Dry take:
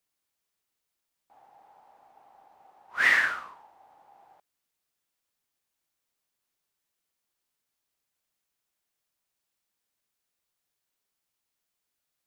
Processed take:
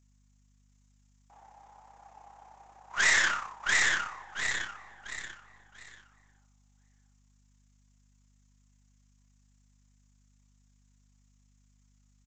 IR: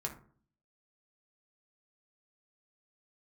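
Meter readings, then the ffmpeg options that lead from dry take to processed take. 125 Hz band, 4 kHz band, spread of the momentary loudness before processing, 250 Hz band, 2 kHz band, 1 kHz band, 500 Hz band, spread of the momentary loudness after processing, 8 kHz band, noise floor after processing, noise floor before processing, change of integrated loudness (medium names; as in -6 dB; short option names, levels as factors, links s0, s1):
no reading, +7.5 dB, 18 LU, +3.0 dB, 0.0 dB, +2.0 dB, +1.5 dB, 18 LU, +16.5 dB, -66 dBFS, -84 dBFS, -4.0 dB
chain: -filter_complex "[0:a]aeval=exprs='0.335*(cos(1*acos(clip(val(0)/0.335,-1,1)))-cos(1*PI/2))+0.075*(cos(6*acos(clip(val(0)/0.335,-1,1)))-cos(6*PI/2))':c=same,asplit=2[s0][s1];[s1]aecho=0:1:686|1372|2058|2744:0.631|0.196|0.0606|0.0188[s2];[s0][s2]amix=inputs=2:normalize=0,tremolo=f=33:d=0.571,aexciter=amount=8.5:drive=5.9:freq=6200,equalizer=f=1000:t=o:w=1:g=6,equalizer=f=2000:t=o:w=1:g=5,equalizer=f=4000:t=o:w=1:g=6,aresample=16000,asoftclip=type=tanh:threshold=0.119,aresample=44100,flanger=delay=8.4:depth=1.7:regen=70:speed=1.5:shape=triangular,asplit=2[s3][s4];[s4]adelay=1050,volume=0.0631,highshelf=f=4000:g=-23.6[s5];[s3][s5]amix=inputs=2:normalize=0,aeval=exprs='val(0)+0.000398*(sin(2*PI*50*n/s)+sin(2*PI*2*50*n/s)/2+sin(2*PI*3*50*n/s)/3+sin(2*PI*4*50*n/s)/4+sin(2*PI*5*50*n/s)/5)':c=same,volume=1.5"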